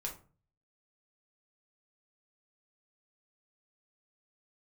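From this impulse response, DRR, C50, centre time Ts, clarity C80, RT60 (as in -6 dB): -1.0 dB, 10.0 dB, 17 ms, 16.5 dB, 0.40 s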